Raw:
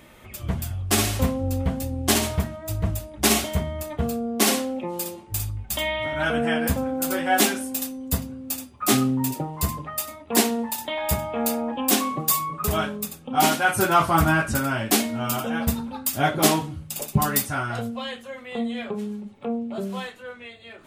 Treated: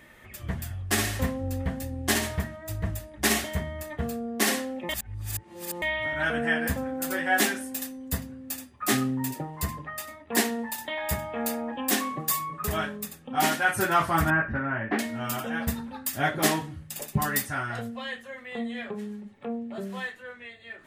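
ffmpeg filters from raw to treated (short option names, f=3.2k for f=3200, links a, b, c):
-filter_complex "[0:a]asettb=1/sr,asplit=3[a][b][c];[a]atrim=end=9.644[d];[b]atrim=start=9.64:end=10.32,asetpts=PTS-STARTPTS,afade=t=in:d=0.004:c=qsin,afade=t=out:st=0.676:d=0.004:c=qsin,highshelf=f=6.2k:g=-5.5[e];[c]atrim=start=10.316[f];[d][e]acrossfade=d=0.004:c1=hsin:c2=qsin[g];[g][f]acrossfade=d=0.004:c1=qsin:c2=hsin,asettb=1/sr,asplit=3[h][i][j];[h]atrim=end=14.304[k];[i]atrim=start=14.3:end=14.99,asetpts=PTS-STARTPTS,afade=t=in:d=0.004:c=qsin,afade=t=out:st=0.686:d=0.004:c=qsin,lowpass=f=2.1k:w=0.5412,lowpass=f=2.1k:w=1.3066[l];[j]atrim=start=14.986[m];[k][l]acrossfade=d=0.004:c1=hsin:c2=qsin[n];[n][m]acrossfade=d=0.004:c1=qsin:c2=hsin,asplit=3[o][p][q];[o]atrim=end=4.892[r];[p]atrim=start=4.888:end=5.822,asetpts=PTS-STARTPTS,areverse[s];[q]atrim=start=5.818[t];[r][s]acrossfade=d=0.004:c1=hsin:c2=hsin[u];[u][t]acrossfade=d=0.004:c1=hsin:c2=hsin,equalizer=f=1.8k:w=4.6:g=12,volume=-5.5dB"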